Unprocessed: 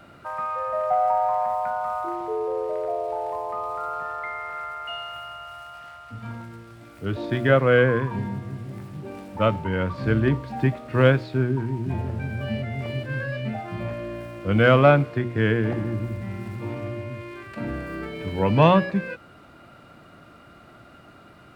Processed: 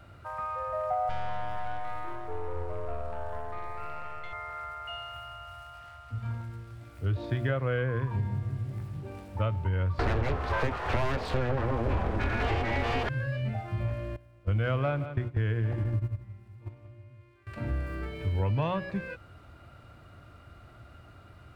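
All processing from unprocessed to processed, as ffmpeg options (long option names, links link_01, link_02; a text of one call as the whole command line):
ffmpeg -i in.wav -filter_complex "[0:a]asettb=1/sr,asplit=3[link_01][link_02][link_03];[link_01]atrim=end=1.094[link_04];[link_02]atrim=start=1.09:end=4.33,asetpts=PTS-STARTPTS,afade=type=in:duration=0.004:curve=qsin,afade=type=out:start_time=3.236:duration=0.004:curve=qsin,aeval=exprs='(tanh(17.8*val(0)+0.8)-tanh(0.8))/17.8':channel_layout=same,aecho=1:1:476:0.266,atrim=end_sample=142884[link_05];[link_03]atrim=start=4.326[link_06];[link_04][link_05]acrossfade=duration=0.004:curve1=hsin:curve2=qsin[link_07];[link_07][link_06]acrossfade=duration=0.004:curve1=qsin:curve2=hsin,asettb=1/sr,asplit=3[link_08][link_09][link_10];[link_08]atrim=end=9.994[link_11];[link_09]atrim=start=9.99:end=13.09,asetpts=PTS-STARTPTS,afade=type=in:duration=0.004:curve=qsin,afade=type=out:start_time=3.096:duration=0.004:curve=qsin,aeval=exprs='abs(val(0))':channel_layout=same,asplit=2[link_12][link_13];[link_13]highpass=frequency=720:poles=1,volume=32dB,asoftclip=type=tanh:threshold=-3.5dB[link_14];[link_12][link_14]amix=inputs=2:normalize=0,lowpass=frequency=1500:poles=1,volume=-6dB,equalizer=frequency=64:width_type=o:width=1.2:gain=12.5[link_15];[link_10]atrim=start=13.086[link_16];[link_11][link_15]acrossfade=duration=0.004:curve1=hsin:curve2=qsin[link_17];[link_17][link_16]acrossfade=duration=0.004:curve1=qsin:curve2=hsin,asettb=1/sr,asplit=3[link_18][link_19][link_20];[link_18]atrim=end=14.164[link_21];[link_19]atrim=start=14.16:end=17.47,asetpts=PTS-STARTPTS,afade=type=in:duration=0.004:curve=qsin,afade=type=out:start_time=3.306:duration=0.004:curve=qsin,agate=range=-18dB:threshold=-28dB:ratio=16:release=100:detection=peak,aecho=1:1:171|342:0.141|0.0367,atrim=end_sample=145971[link_22];[link_20]atrim=start=17.466[link_23];[link_21][link_22]acrossfade=duration=0.004:curve1=hsin:curve2=qsin[link_24];[link_24][link_23]acrossfade=duration=0.004:curve1=qsin:curve2=hsin,lowshelf=frequency=130:width_type=q:width=1.5:gain=11.5,acompressor=threshold=-19dB:ratio=6,volume=-6dB" out.wav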